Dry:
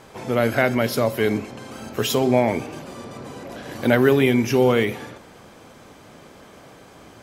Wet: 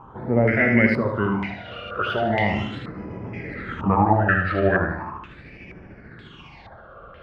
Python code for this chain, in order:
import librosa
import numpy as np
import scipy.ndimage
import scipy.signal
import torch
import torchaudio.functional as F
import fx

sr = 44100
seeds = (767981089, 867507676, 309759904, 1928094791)

y = fx.pitch_glide(x, sr, semitones=-7.0, runs='starting unshifted')
y = fx.phaser_stages(y, sr, stages=8, low_hz=260.0, high_hz=1200.0, hz=0.39, feedback_pct=50)
y = fx.echo_feedback(y, sr, ms=76, feedback_pct=42, wet_db=-5)
y = fx.filter_held_lowpass(y, sr, hz=2.1, low_hz=870.0, high_hz=3000.0)
y = F.gain(torch.from_numpy(y), 3.0).numpy()